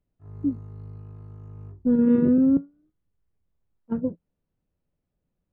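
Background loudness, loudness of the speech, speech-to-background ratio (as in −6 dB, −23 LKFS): −43.0 LKFS, −23.0 LKFS, 20.0 dB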